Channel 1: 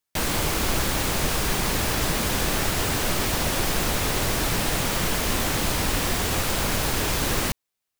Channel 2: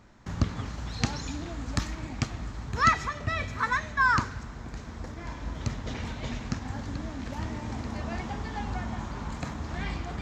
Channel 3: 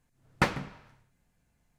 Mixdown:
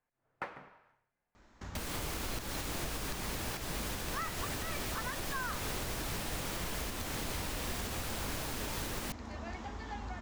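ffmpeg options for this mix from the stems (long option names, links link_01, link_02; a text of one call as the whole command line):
ffmpeg -i stem1.wav -i stem2.wav -i stem3.wav -filter_complex "[0:a]adelay=1600,volume=-11dB[link_01];[1:a]acompressor=threshold=-36dB:ratio=1.5,equalizer=frequency=140:width_type=o:width=0.78:gain=-12.5,adelay=1350,volume=-4.5dB[link_02];[2:a]acrossover=split=400 2300:gain=0.158 1 0.178[link_03][link_04][link_05];[link_03][link_04][link_05]amix=inputs=3:normalize=0,volume=-5.5dB[link_06];[link_01][link_02][link_06]amix=inputs=3:normalize=0,alimiter=level_in=3dB:limit=-24dB:level=0:latency=1:release=231,volume=-3dB" out.wav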